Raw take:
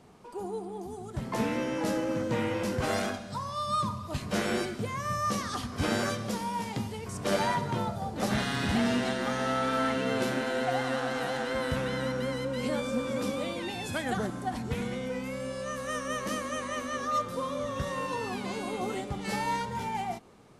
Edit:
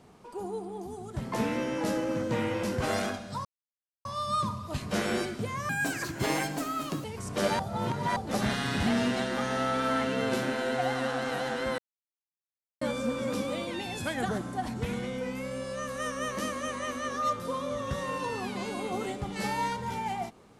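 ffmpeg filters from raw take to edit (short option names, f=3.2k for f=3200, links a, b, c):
-filter_complex "[0:a]asplit=8[a][b][c][d][e][f][g][h];[a]atrim=end=3.45,asetpts=PTS-STARTPTS,afade=t=out:st=3.446:d=0.004:c=hsin,apad=pad_dur=0.6[i];[b]atrim=start=3.45:end=5.094,asetpts=PTS-STARTPTS,afade=t=in:d=0.004:c=hsin[j];[c]atrim=start=5.09:end=6.93,asetpts=PTS-STARTPTS,asetrate=59976,aresample=44100[k];[d]atrim=start=6.926:end=7.482[l];[e]atrim=start=7.478:end=8.052,asetpts=PTS-STARTPTS,areverse[m];[f]atrim=start=8.048:end=11.67,asetpts=PTS-STARTPTS,afade=t=out:st=3.618:d=0.004:c=hsin[n];[g]atrim=start=11.67:end=12.7,asetpts=PTS-STARTPTS,volume=0[o];[h]atrim=start=12.7,asetpts=PTS-STARTPTS,afade=t=in:d=0.004:c=hsin[p];[i][j]concat=n=2:v=0:a=1[q];[q][k]acrossfade=d=0.004:c1=hsin:c2=hsin[r];[r][l]acrossfade=d=0.004:c1=hsin:c2=hsin[s];[s][m]acrossfade=d=0.004:c1=hsin:c2=hsin[t];[n][o][p]concat=n=3:v=0:a=1[u];[t][u]acrossfade=d=0.004:c1=hsin:c2=hsin"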